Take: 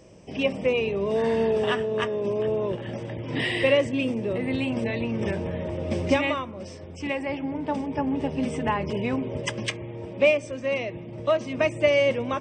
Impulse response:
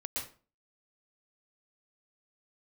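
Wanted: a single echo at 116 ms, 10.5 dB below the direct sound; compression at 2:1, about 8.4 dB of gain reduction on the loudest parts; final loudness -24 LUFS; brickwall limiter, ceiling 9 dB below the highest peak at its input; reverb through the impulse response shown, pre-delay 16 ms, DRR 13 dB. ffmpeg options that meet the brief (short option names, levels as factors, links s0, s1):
-filter_complex "[0:a]acompressor=threshold=0.0282:ratio=2,alimiter=limit=0.0631:level=0:latency=1,aecho=1:1:116:0.299,asplit=2[s0][s1];[1:a]atrim=start_sample=2205,adelay=16[s2];[s1][s2]afir=irnorm=-1:irlink=0,volume=0.178[s3];[s0][s3]amix=inputs=2:normalize=0,volume=2.82"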